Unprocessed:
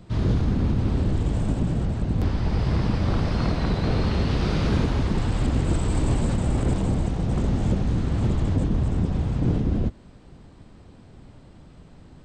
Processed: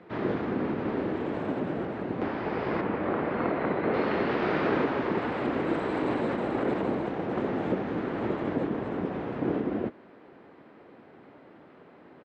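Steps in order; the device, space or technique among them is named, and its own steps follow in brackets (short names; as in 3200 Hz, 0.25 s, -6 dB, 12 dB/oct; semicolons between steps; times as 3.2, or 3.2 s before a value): octave pedal (harmoniser -12 st -3 dB); Chebyshev band-pass 350–2000 Hz, order 2; 2.81–3.94 air absorption 280 m; gain +3.5 dB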